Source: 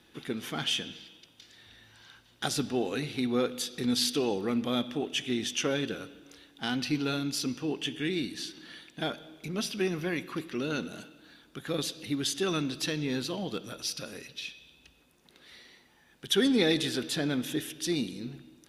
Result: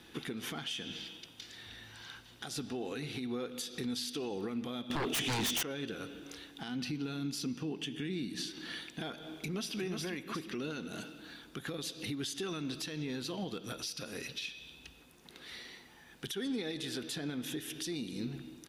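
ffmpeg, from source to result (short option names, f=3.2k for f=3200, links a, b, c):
-filter_complex "[0:a]asettb=1/sr,asplit=3[a][b][c];[a]atrim=end=4.904[d];[b]atrim=start=4.9:end=5.63,asetpts=PTS-STARTPTS,afade=t=in:d=0.004:c=qsin,afade=t=out:st=0.726:d=0.004:c=qsin,aeval=exprs='0.15*sin(PI/2*6.31*val(0)/0.15)':c=same[e];[c]atrim=start=5.626[f];[d][e]acrossfade=d=0.004:c1=hsin:c2=qsin[g];[g][f]acrossfade=d=0.004:c1=qsin:c2=hsin,asettb=1/sr,asplit=3[h][i][j];[h]atrim=end=6.684[k];[i]atrim=start=6.68:end=8.48,asetpts=PTS-STARTPTS,afade=t=in:d=0.004:c=qsin,afade=t=out:st=1.796:d=0.004:c=qsin,equalizer=f=190:w=1.3:g=8.5[l];[j]atrim=start=8.476[m];[k][l]acrossfade=d=0.004:c1=hsin:c2=qsin[n];[n][m]acrossfade=d=0.004:c1=qsin:c2=hsin,asplit=2[o][p];[p]afade=t=in:st=9.32:d=0.01,afade=t=out:st=9.79:d=0.01,aecho=0:1:360|720|1080|1440:0.891251|0.222813|0.0557032|0.0139258[q];[o][q]amix=inputs=2:normalize=0,bandreject=f=580:w=12,acompressor=threshold=-39dB:ratio=2,alimiter=level_in=9.5dB:limit=-24dB:level=0:latency=1:release=231,volume=-9.5dB,volume=5dB"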